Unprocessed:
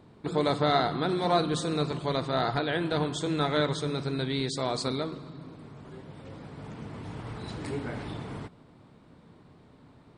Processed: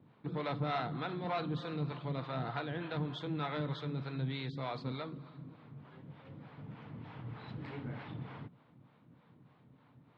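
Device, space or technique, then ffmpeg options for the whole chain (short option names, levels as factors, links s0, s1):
guitar amplifier with harmonic tremolo: -filter_complex "[0:a]acrossover=split=460[s0][s1];[s0]aeval=exprs='val(0)*(1-0.7/2+0.7/2*cos(2*PI*3.3*n/s))':c=same[s2];[s1]aeval=exprs='val(0)*(1-0.7/2-0.7/2*cos(2*PI*3.3*n/s))':c=same[s3];[s2][s3]amix=inputs=2:normalize=0,asoftclip=type=tanh:threshold=0.0668,highpass=110,equalizer=f=130:t=q:w=4:g=7,equalizer=f=390:t=q:w=4:g=-7,equalizer=f=640:t=q:w=4:g=-3,lowpass=f=3500:w=0.5412,lowpass=f=3500:w=1.3066,volume=0.631"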